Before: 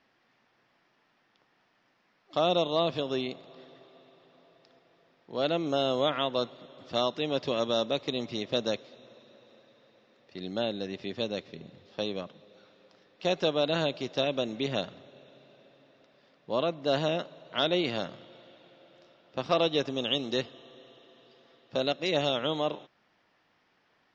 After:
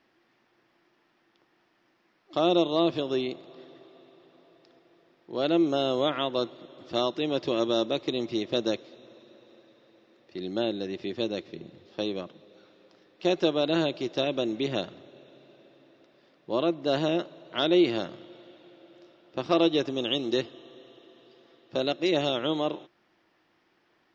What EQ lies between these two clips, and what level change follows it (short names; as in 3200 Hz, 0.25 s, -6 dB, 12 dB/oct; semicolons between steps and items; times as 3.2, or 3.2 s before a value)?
bell 340 Hz +12 dB 0.28 oct; 0.0 dB